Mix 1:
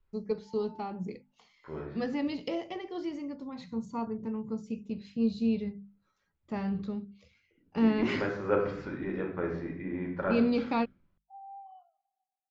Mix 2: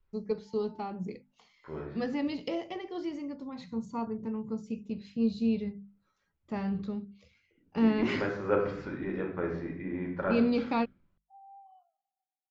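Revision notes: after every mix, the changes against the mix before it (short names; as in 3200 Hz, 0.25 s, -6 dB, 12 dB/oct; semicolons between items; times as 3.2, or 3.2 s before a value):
background -6.0 dB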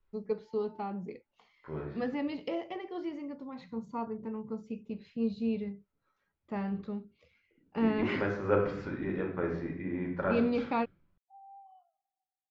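first voice: add tone controls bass -7 dB, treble -13 dB; master: remove notches 50/100/150/200/250 Hz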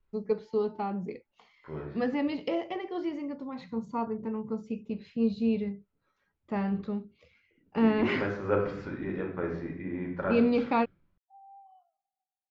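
first voice +4.5 dB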